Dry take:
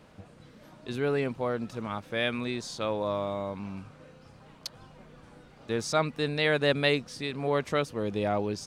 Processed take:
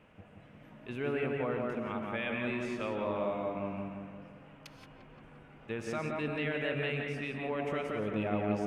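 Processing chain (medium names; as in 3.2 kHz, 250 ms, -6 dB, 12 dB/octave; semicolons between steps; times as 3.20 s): resonant high shelf 3.4 kHz -7.5 dB, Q 3; peak limiter -20.5 dBFS, peak gain reduction 10 dB; on a send: feedback echo behind a low-pass 174 ms, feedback 53%, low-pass 2.1 kHz, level -3 dB; on the sum: gated-style reverb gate 200 ms rising, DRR 6 dB; trim -6 dB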